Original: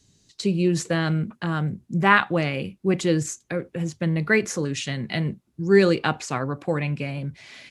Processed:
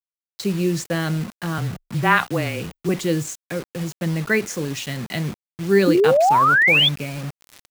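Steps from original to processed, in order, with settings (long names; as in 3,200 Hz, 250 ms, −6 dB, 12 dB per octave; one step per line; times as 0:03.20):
bit reduction 6 bits
0:01.58–0:02.89: frequency shifter −21 Hz
0:05.87–0:06.89: sound drawn into the spectrogram rise 280–3,600 Hz −15 dBFS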